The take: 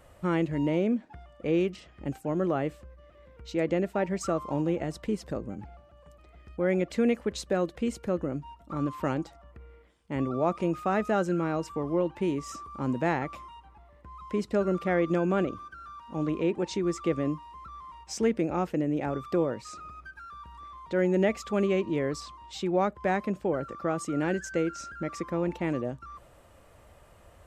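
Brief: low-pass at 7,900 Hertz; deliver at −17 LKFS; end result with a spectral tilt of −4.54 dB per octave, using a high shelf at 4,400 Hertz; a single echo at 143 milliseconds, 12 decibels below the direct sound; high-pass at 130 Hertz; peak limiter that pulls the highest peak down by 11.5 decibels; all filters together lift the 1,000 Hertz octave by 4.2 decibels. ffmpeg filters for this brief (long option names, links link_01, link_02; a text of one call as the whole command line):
ffmpeg -i in.wav -af "highpass=130,lowpass=7900,equalizer=frequency=1000:width_type=o:gain=6,highshelf=frequency=4400:gain=-6,alimiter=limit=-23dB:level=0:latency=1,aecho=1:1:143:0.251,volume=17dB" out.wav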